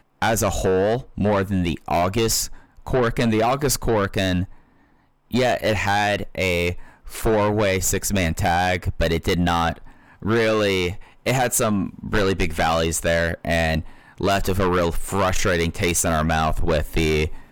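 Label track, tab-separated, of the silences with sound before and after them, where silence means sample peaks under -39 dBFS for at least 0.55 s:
4.560000	5.310000	silence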